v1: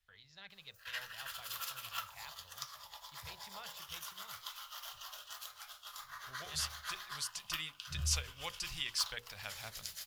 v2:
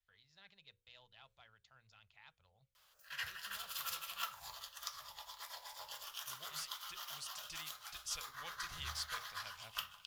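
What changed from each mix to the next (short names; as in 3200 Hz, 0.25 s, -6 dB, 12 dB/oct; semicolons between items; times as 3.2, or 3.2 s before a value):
speech -8.5 dB; background: entry +2.25 s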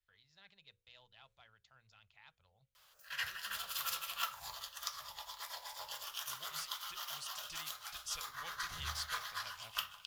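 background +3.5 dB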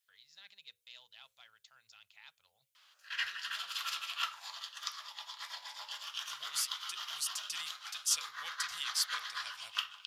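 background: add BPF 680–3200 Hz; master: add tilt +4.5 dB/oct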